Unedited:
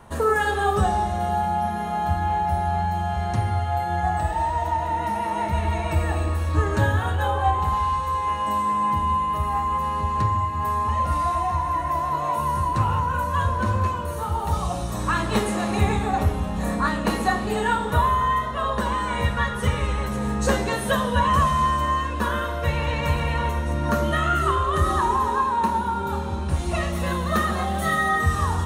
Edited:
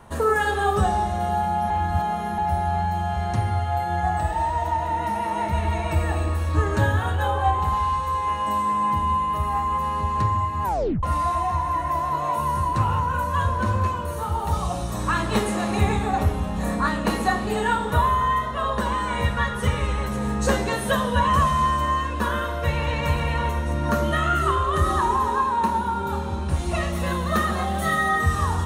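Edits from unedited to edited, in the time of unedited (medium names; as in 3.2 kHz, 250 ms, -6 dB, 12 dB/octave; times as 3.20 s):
1.70–2.38 s: reverse
10.64 s: tape stop 0.39 s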